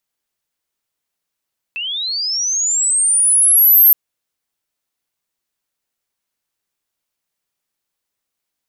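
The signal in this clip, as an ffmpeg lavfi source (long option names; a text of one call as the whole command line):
ffmpeg -f lavfi -i "aevalsrc='pow(10,(-21+16*t/2.17)/20)*sin(2*PI*(2600*t+10400*t*t/(2*2.17)))':duration=2.17:sample_rate=44100" out.wav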